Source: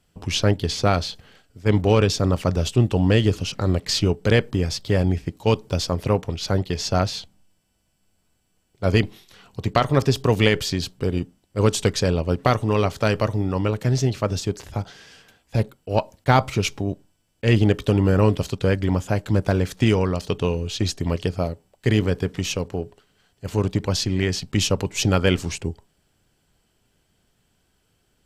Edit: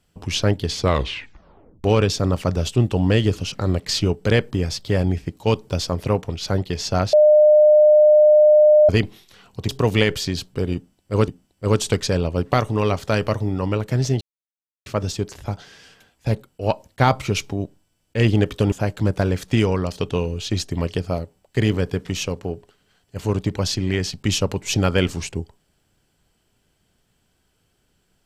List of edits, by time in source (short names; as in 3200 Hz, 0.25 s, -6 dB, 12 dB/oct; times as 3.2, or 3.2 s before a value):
0.77 tape stop 1.07 s
7.13–8.89 bleep 605 Hz -8.5 dBFS
9.69–10.14 cut
11.21–11.73 loop, 2 plays
14.14 insert silence 0.65 s
18–19.01 cut